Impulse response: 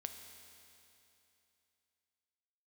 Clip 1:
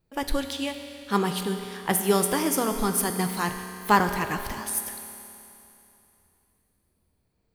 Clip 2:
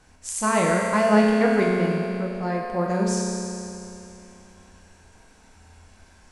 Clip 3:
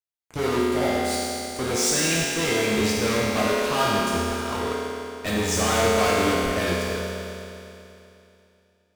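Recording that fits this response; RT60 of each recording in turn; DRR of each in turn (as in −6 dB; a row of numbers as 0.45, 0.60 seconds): 1; 2.9, 2.9, 2.9 seconds; 5.5, −3.0, −7.5 decibels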